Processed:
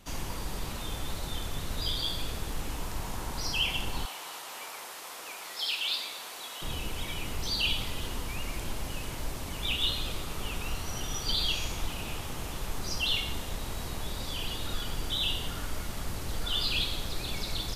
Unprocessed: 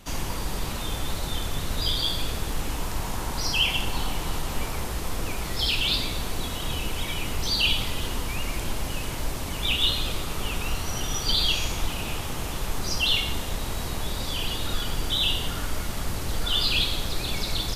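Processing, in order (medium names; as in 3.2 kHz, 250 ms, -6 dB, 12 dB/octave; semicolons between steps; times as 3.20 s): 4.05–6.62 s: high-pass 690 Hz 12 dB/octave; trim -6 dB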